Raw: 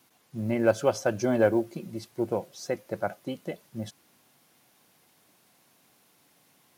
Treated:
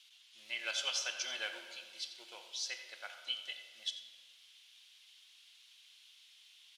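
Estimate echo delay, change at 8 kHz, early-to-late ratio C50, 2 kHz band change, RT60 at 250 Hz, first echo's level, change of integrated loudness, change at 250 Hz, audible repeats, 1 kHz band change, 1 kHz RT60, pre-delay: 87 ms, +1.0 dB, 6.5 dB, −4.0 dB, 1.7 s, −14.5 dB, −10.5 dB, −37.5 dB, 1, −17.0 dB, 1.9 s, 5 ms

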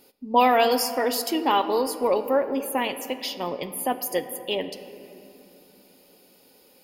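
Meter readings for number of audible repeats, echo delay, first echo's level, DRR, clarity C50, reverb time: no echo audible, no echo audible, no echo audible, 8.5 dB, 11.0 dB, 2.9 s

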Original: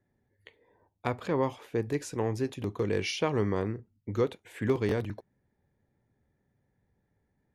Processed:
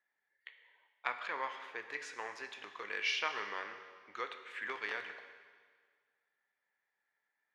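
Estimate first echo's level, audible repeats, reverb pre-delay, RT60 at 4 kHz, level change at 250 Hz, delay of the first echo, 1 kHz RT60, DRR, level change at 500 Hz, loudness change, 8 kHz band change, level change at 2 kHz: no echo audible, no echo audible, 21 ms, 1.7 s, −26.5 dB, no echo audible, 1.7 s, 7.0 dB, −18.0 dB, −8.0 dB, −9.0 dB, +3.0 dB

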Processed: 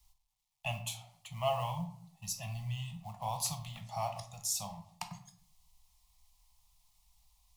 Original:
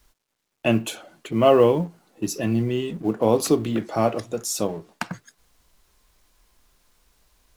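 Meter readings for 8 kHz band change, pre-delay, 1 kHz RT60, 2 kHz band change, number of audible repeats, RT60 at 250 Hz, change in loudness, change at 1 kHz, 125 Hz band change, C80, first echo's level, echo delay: −6.0 dB, 13 ms, 0.55 s, −13.0 dB, no echo audible, 0.75 s, −15.5 dB, −10.5 dB, −11.0 dB, 15.0 dB, no echo audible, no echo audible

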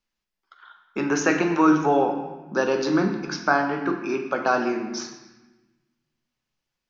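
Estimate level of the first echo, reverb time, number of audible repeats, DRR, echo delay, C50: no echo audible, 1.1 s, no echo audible, 4.0 dB, no echo audible, 6.5 dB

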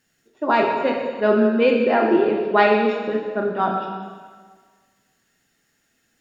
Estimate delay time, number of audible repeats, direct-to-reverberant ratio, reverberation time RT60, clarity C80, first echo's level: no echo audible, no echo audible, 0.0 dB, 1.6 s, 4.5 dB, no echo audible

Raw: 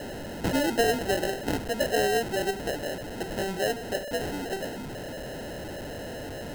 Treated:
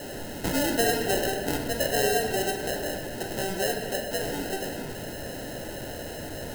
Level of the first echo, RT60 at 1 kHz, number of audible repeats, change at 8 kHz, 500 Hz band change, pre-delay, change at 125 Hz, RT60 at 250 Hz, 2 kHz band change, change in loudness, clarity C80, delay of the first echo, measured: no echo audible, 1.7 s, no echo audible, +5.5 dB, 0.0 dB, 6 ms, +0.5 dB, 2.6 s, +1.0 dB, +1.0 dB, 5.5 dB, no echo audible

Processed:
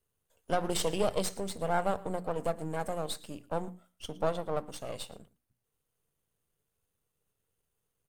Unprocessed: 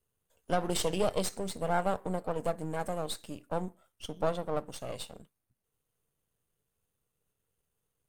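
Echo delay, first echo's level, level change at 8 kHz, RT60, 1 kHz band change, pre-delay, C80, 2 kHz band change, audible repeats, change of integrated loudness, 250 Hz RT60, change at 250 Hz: 113 ms, −21.0 dB, 0.0 dB, no reverb audible, 0.0 dB, no reverb audible, no reverb audible, 0.0 dB, 1, 0.0 dB, no reverb audible, −1.0 dB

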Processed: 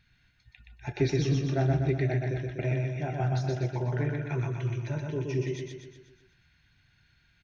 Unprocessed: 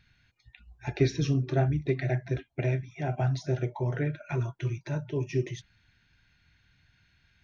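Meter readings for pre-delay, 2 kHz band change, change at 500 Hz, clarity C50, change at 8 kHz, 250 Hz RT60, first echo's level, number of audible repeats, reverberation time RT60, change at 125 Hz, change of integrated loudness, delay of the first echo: no reverb audible, +0.5 dB, 0.0 dB, no reverb audible, can't be measured, no reverb audible, −3.0 dB, 6, no reverb audible, +0.5 dB, +0.5 dB, 123 ms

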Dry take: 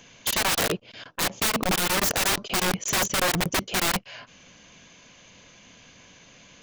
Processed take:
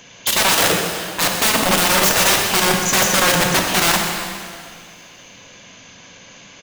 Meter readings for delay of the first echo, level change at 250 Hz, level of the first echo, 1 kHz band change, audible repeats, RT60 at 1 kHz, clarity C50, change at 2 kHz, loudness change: 128 ms, +7.5 dB, −12.0 dB, +9.5 dB, 1, 2.1 s, 2.5 dB, +9.5 dB, +9.0 dB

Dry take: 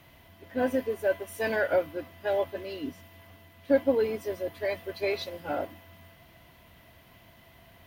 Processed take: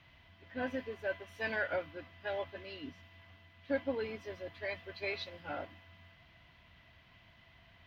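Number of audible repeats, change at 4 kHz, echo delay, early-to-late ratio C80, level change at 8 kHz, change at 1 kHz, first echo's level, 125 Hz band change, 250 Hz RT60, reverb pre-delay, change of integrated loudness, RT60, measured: no echo audible, −4.5 dB, no echo audible, no reverb audible, can't be measured, −8.0 dB, no echo audible, −6.0 dB, no reverb audible, no reverb audible, −9.5 dB, no reverb audible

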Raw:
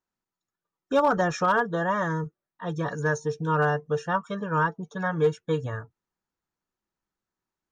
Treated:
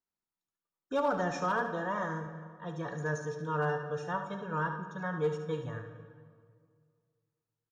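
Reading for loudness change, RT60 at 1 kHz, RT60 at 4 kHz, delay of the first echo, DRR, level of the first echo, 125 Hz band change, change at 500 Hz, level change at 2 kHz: −8.0 dB, 2.0 s, 1.3 s, 72 ms, 5.5 dB, −9.5 dB, −8.0 dB, −7.5 dB, −8.0 dB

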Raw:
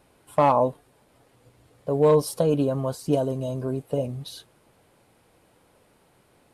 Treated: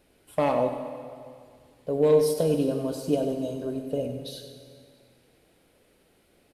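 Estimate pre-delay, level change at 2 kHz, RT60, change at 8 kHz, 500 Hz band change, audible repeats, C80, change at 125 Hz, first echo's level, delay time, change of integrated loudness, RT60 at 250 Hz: 6 ms, −1.0 dB, 2.1 s, −2.0 dB, −1.5 dB, 1, 6.0 dB, −6.0 dB, −10.5 dB, 96 ms, −2.5 dB, 2.1 s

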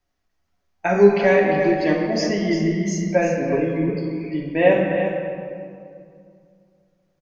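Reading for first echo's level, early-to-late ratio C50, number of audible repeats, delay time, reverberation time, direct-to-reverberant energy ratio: −8.0 dB, 1.5 dB, 1, 346 ms, 2.4 s, −2.5 dB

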